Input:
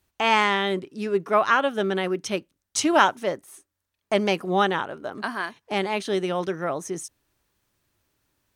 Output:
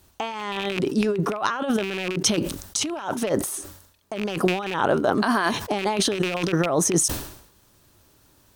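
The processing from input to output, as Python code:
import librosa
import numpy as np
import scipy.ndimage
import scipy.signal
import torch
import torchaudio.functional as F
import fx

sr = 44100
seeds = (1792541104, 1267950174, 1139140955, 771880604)

y = fx.rattle_buzz(x, sr, strikes_db=-30.0, level_db=-12.0)
y = fx.over_compress(y, sr, threshold_db=-32.0, ratio=-1.0)
y = fx.peak_eq(y, sr, hz=2100.0, db=-6.5, octaves=0.96)
y = fx.sustainer(y, sr, db_per_s=82.0)
y = y * librosa.db_to_amplitude(7.5)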